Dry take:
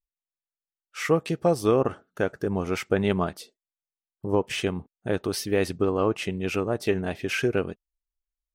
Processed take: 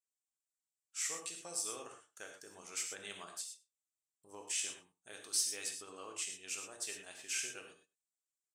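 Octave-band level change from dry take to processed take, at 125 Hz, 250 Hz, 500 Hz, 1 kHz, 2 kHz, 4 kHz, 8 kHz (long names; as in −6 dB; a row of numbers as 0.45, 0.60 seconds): below −35 dB, −32.0 dB, −28.5 dB, −21.0 dB, −14.5 dB, −6.5 dB, +4.5 dB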